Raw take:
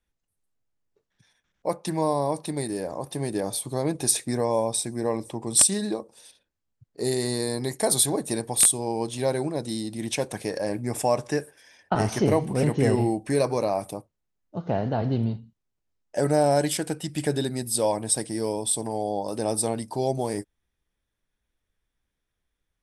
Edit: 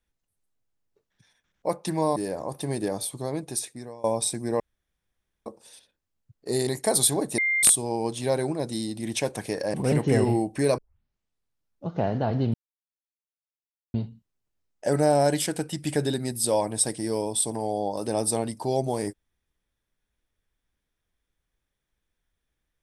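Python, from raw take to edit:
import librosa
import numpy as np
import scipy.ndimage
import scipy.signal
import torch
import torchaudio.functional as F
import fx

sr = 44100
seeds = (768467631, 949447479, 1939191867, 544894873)

y = fx.edit(x, sr, fx.cut(start_s=2.16, length_s=0.52),
    fx.fade_out_to(start_s=3.32, length_s=1.24, floor_db=-23.5),
    fx.room_tone_fill(start_s=5.12, length_s=0.86),
    fx.cut(start_s=7.19, length_s=0.44),
    fx.bleep(start_s=8.34, length_s=0.25, hz=2100.0, db=-21.0),
    fx.cut(start_s=10.7, length_s=1.75),
    fx.tape_start(start_s=13.49, length_s=1.12),
    fx.insert_silence(at_s=15.25, length_s=1.4), tone=tone)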